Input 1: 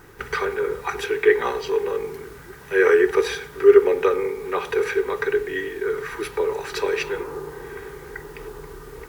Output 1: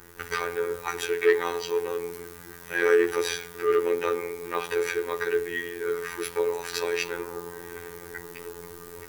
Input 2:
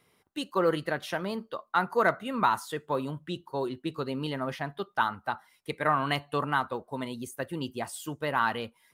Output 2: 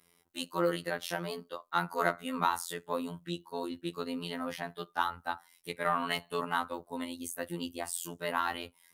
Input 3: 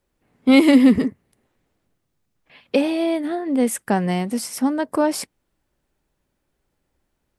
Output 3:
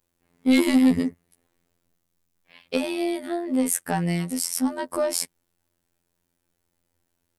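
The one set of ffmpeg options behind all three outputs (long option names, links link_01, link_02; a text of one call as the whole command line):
ffmpeg -i in.wav -af "highshelf=frequency=4900:gain=10.5,acontrast=81,afftfilt=real='hypot(re,im)*cos(PI*b)':imag='0':win_size=2048:overlap=0.75,volume=-8dB" out.wav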